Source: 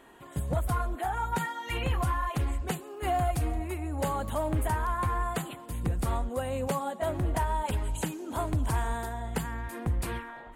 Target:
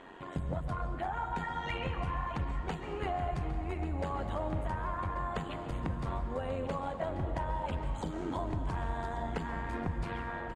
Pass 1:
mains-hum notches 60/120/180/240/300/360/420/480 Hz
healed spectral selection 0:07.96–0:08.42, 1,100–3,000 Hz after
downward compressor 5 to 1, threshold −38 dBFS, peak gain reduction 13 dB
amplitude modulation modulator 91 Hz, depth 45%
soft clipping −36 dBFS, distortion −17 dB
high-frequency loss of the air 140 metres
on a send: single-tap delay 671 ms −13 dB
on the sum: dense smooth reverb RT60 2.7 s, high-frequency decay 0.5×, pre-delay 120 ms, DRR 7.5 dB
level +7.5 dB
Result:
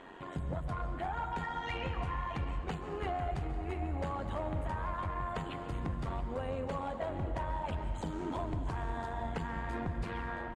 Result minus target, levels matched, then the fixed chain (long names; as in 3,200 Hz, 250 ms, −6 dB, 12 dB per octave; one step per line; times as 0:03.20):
soft clipping: distortion +15 dB; echo 467 ms early
mains-hum notches 60/120/180/240/300/360/420/480 Hz
healed spectral selection 0:07.96–0:08.42, 1,100–3,000 Hz after
downward compressor 5 to 1, threshold −38 dBFS, peak gain reduction 13 dB
amplitude modulation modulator 91 Hz, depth 45%
soft clipping −26.5 dBFS, distortion −33 dB
high-frequency loss of the air 140 metres
on a send: single-tap delay 1,138 ms −13 dB
on the sum: dense smooth reverb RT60 2.7 s, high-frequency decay 0.5×, pre-delay 120 ms, DRR 7.5 dB
level +7.5 dB